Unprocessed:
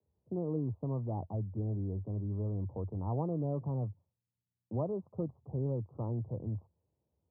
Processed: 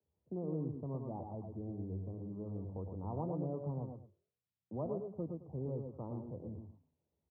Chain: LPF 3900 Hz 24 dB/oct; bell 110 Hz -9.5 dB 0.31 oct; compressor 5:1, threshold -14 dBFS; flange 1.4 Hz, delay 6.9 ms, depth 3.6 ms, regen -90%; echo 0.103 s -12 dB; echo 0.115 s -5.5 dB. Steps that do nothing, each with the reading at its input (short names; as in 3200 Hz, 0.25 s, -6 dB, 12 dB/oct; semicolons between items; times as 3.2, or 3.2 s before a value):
LPF 3900 Hz: input band ends at 1000 Hz; compressor, threshold -14 dBFS: input peak -23.0 dBFS